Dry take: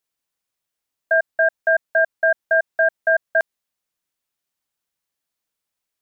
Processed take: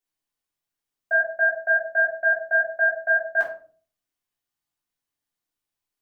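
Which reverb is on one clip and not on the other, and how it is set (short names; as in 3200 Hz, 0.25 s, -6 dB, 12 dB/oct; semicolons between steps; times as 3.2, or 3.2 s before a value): shoebox room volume 290 m³, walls furnished, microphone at 3.4 m; gain -9.5 dB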